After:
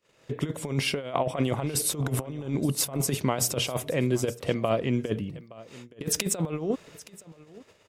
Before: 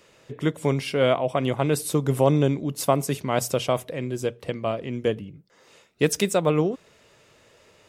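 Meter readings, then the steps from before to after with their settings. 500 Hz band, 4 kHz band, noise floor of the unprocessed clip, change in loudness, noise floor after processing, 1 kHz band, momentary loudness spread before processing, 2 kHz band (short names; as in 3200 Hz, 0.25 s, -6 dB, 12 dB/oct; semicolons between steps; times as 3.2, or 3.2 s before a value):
-7.0 dB, +0.5 dB, -58 dBFS, -4.0 dB, -60 dBFS, -6.0 dB, 8 LU, -3.0 dB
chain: gate -54 dBFS, range -28 dB; negative-ratio compressor -26 dBFS, ratio -0.5; echo 0.87 s -20 dB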